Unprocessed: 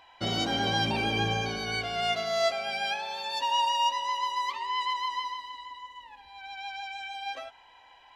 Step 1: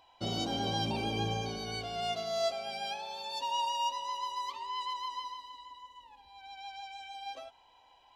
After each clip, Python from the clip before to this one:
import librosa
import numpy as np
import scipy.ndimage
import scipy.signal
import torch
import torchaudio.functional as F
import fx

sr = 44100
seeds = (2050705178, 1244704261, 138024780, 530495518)

y = fx.peak_eq(x, sr, hz=1800.0, db=-12.5, octaves=0.93)
y = F.gain(torch.from_numpy(y), -3.5).numpy()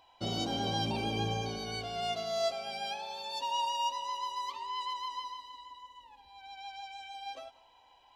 y = x + 10.0 ** (-21.5 / 20.0) * np.pad(x, (int(189 * sr / 1000.0), 0))[:len(x)]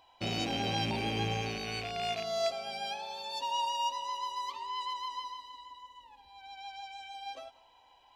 y = fx.rattle_buzz(x, sr, strikes_db=-46.0, level_db=-29.0)